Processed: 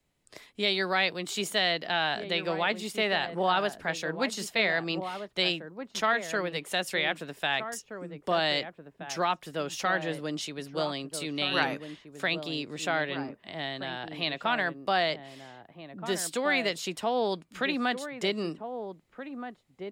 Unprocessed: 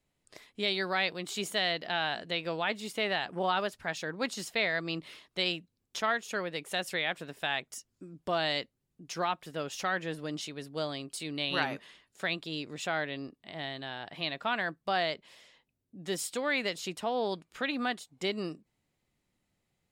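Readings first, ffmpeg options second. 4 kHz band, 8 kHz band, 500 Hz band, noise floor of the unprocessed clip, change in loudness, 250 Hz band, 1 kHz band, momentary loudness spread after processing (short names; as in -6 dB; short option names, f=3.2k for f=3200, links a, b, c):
+3.5 dB, +3.5 dB, +4.0 dB, -81 dBFS, +3.5 dB, +4.0 dB, +4.0 dB, 13 LU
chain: -filter_complex "[0:a]acrossover=split=130|470|3600[a][b][c][d];[a]alimiter=level_in=33.5dB:limit=-24dB:level=0:latency=1,volume=-33.5dB[e];[e][b][c][d]amix=inputs=4:normalize=0,asplit=2[f][g];[g]adelay=1574,volume=-8dB,highshelf=f=4k:g=-35.4[h];[f][h]amix=inputs=2:normalize=0,volume=3.5dB"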